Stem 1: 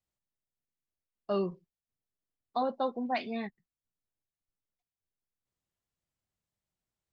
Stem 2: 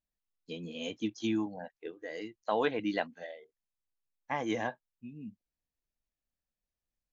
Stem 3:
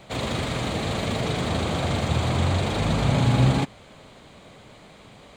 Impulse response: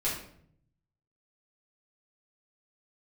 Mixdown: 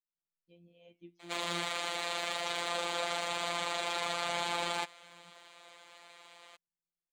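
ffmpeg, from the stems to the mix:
-filter_complex "[0:a]adelay=150,volume=-9.5dB[link_01];[1:a]lowpass=2400,flanger=delay=8.7:depth=2.9:regen=-86:speed=1.4:shape=triangular,volume=-12dB[link_02];[2:a]highpass=780,adelay=1200,volume=0dB[link_03];[link_01][link_02][link_03]amix=inputs=3:normalize=0,afftfilt=real='hypot(re,im)*cos(PI*b)':imag='0':win_size=1024:overlap=0.75"

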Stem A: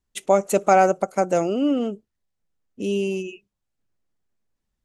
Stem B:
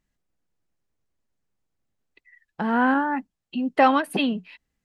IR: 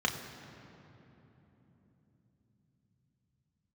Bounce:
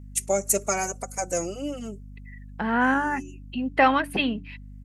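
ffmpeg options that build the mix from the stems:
-filter_complex "[0:a]highshelf=frequency=9700:gain=-5.5,aexciter=amount=12.8:drive=2:freq=5000,asplit=2[link_01][link_02];[link_02]adelay=3.4,afreqshift=0.66[link_03];[link_01][link_03]amix=inputs=2:normalize=1,volume=-6.5dB[link_04];[1:a]bandreject=frequency=94.84:width_type=h:width=4,bandreject=frequency=189.68:width_type=h:width=4,bandreject=frequency=284.52:width_type=h:width=4,bandreject=frequency=379.36:width_type=h:width=4,volume=-2.5dB,asplit=2[link_05][link_06];[link_06]apad=whole_len=213872[link_07];[link_04][link_07]sidechaincompress=threshold=-36dB:ratio=8:attack=16:release=527[link_08];[link_08][link_05]amix=inputs=2:normalize=0,equalizer=frequency=2100:width=1.5:gain=7,aeval=exprs='val(0)+0.00891*(sin(2*PI*50*n/s)+sin(2*PI*2*50*n/s)/2+sin(2*PI*3*50*n/s)/3+sin(2*PI*4*50*n/s)/4+sin(2*PI*5*50*n/s)/5)':channel_layout=same"

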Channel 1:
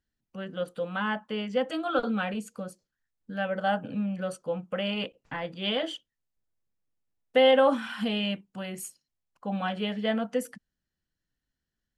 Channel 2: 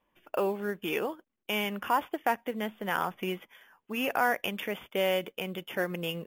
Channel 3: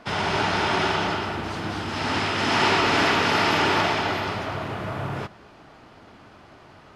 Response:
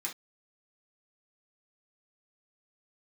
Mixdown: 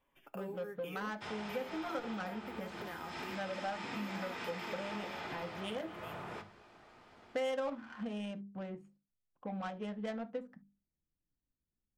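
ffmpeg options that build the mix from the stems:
-filter_complex "[0:a]bandreject=frequency=50:width_type=h:width=6,bandreject=frequency=100:width_type=h:width=6,bandreject=frequency=150:width_type=h:width=6,bandreject=frequency=200:width_type=h:width=6,bandreject=frequency=250:width_type=h:width=6,bandreject=frequency=300:width_type=h:width=6,bandreject=frequency=350:width_type=h:width=6,bandreject=frequency=400:width_type=h:width=6,adynamicsmooth=sensitivity=2:basefreq=650,volume=-1.5dB,asplit=2[link_01][link_02];[link_02]volume=-12dB[link_03];[1:a]aecho=1:1:7.3:0.55,volume=-4.5dB,afade=type=out:start_time=4.72:duration=0.21:silence=0.237137,asplit=2[link_04][link_05];[link_05]volume=-16.5dB[link_06];[2:a]bandreject=frequency=50:width_type=h:width=6,bandreject=frequency=100:width_type=h:width=6,bandreject=frequency=150:width_type=h:width=6,bandreject=frequency=200:width_type=h:width=6,adelay=1150,volume=-12.5dB,asplit=2[link_07][link_08];[link_08]volume=-6dB[link_09];[link_04][link_07]amix=inputs=2:normalize=0,acrossover=split=390[link_10][link_11];[link_11]acompressor=threshold=-40dB:ratio=6[link_12];[link_10][link_12]amix=inputs=2:normalize=0,alimiter=level_in=8dB:limit=-24dB:level=0:latency=1:release=236,volume=-8dB,volume=0dB[link_13];[3:a]atrim=start_sample=2205[link_14];[link_03][link_06][link_09]amix=inputs=3:normalize=0[link_15];[link_15][link_14]afir=irnorm=-1:irlink=0[link_16];[link_01][link_13][link_16]amix=inputs=3:normalize=0,acompressor=threshold=-41dB:ratio=2.5"

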